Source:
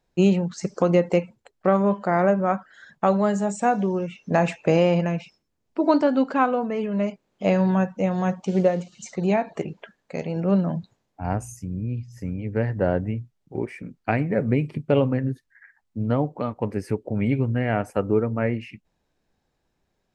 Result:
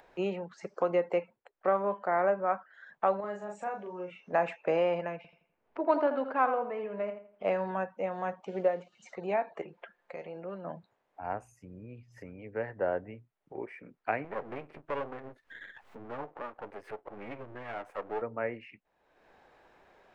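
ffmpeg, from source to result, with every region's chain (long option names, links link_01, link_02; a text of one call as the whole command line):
ffmpeg -i in.wav -filter_complex "[0:a]asettb=1/sr,asplit=3[link_01][link_02][link_03];[link_01]atrim=end=3.204[link_04];[link_02]atrim=start=3.2:end=4.33,asetpts=PTS-STARTPTS,afade=type=in:duration=0.004:curve=qsin,afade=type=out:start_time=1.126:duration=0.004:curve=qsin,acompressor=threshold=-31dB:ratio=2:attack=3.2:release=140:knee=1:detection=peak,asplit=2[link_05][link_06];[link_06]adelay=39,volume=-2.5dB[link_07];[link_05][link_07]amix=inputs=2:normalize=0,atrim=end_sample=49833[link_08];[link_03]atrim=start=4.326[link_09];[link_04][link_08]acrossfade=duration=0.004:curve1=hsin:curve2=qsin[link_10];[link_10][link_09]acrossfade=duration=0.004:curve1=qsin:curve2=hsin,asettb=1/sr,asplit=3[link_11][link_12][link_13];[link_11]atrim=end=5.164[link_14];[link_12]atrim=start=5.16:end=7.51,asetpts=PTS-STARTPTS,afade=type=in:duration=0.004:curve=qsin,afade=type=out:start_time=2.346:duration=0.004:curve=qsin,adynamicsmooth=sensitivity=3.5:basefreq=3800,asplit=2[link_15][link_16];[link_16]adelay=83,lowpass=frequency=3200:poles=1,volume=-8.5dB,asplit=2[link_17][link_18];[link_18]adelay=83,lowpass=frequency=3200:poles=1,volume=0.3,asplit=2[link_19][link_20];[link_20]adelay=83,lowpass=frequency=3200:poles=1,volume=0.3,asplit=2[link_21][link_22];[link_22]adelay=83,lowpass=frequency=3200:poles=1,volume=0.3[link_23];[link_15][link_17][link_19][link_21][link_23]amix=inputs=5:normalize=0,atrim=end_sample=103635[link_24];[link_13]atrim=start=7.506[link_25];[link_14][link_24]acrossfade=duration=0.004:curve1=hsin:curve2=qsin[link_26];[link_26][link_25]acrossfade=duration=0.004:curve1=qsin:curve2=hsin,asettb=1/sr,asplit=3[link_27][link_28][link_29];[link_27]atrim=end=9.624[link_30];[link_28]atrim=start=9.62:end=10.65,asetpts=PTS-STARTPTS,afade=type=in:duration=0.004:curve=qsin,afade=type=out:start_time=1.026:duration=0.004:curve=qsin,asubboost=boost=9:cutoff=60,aecho=1:1:5.7:0.6,atrim=end_sample=45423,acompressor=threshold=-29dB:ratio=2:attack=3.2:release=140:knee=1:detection=peak[link_31];[link_29]atrim=start=10.646[link_32];[link_30][link_31]acrossfade=duration=0.004:curve1=hsin:curve2=qsin[link_33];[link_33][link_32]acrossfade=duration=0.004:curve1=qsin:curve2=hsin,asettb=1/sr,asplit=3[link_34][link_35][link_36];[link_34]atrim=end=14.244[link_37];[link_35]atrim=start=14.24:end=18.22,asetpts=PTS-STARTPTS,afade=type=in:duration=0.004:curve=qsin,afade=type=out:start_time=3.976:duration=0.004:curve=qsin,acompressor=mode=upward:threshold=-25dB:ratio=2.5:attack=3.2:release=140:knee=2.83:detection=peak,aeval=exprs='max(val(0),0)':channel_layout=same[link_38];[link_36]atrim=start=18.216[link_39];[link_37][link_38]acrossfade=duration=0.004:curve1=hsin:curve2=qsin[link_40];[link_40][link_39]acrossfade=duration=0.004:curve1=qsin:curve2=hsin,acrossover=split=400 2700:gain=0.126 1 0.112[link_41][link_42][link_43];[link_41][link_42][link_43]amix=inputs=3:normalize=0,acompressor=mode=upward:threshold=-36dB:ratio=2.5,volume=-5dB" out.wav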